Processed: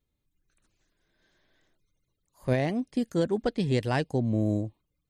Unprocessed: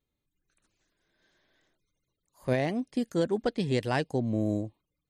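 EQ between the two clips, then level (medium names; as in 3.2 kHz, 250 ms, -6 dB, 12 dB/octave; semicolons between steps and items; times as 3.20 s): bass shelf 130 Hz +7.5 dB; 0.0 dB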